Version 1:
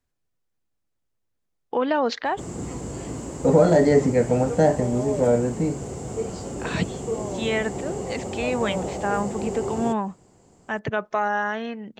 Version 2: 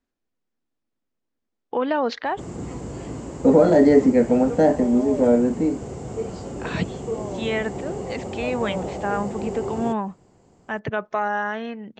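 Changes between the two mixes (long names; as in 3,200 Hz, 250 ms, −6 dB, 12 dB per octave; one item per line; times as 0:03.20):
second voice: add low shelf with overshoot 160 Hz −13 dB, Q 3
master: add high-frequency loss of the air 75 metres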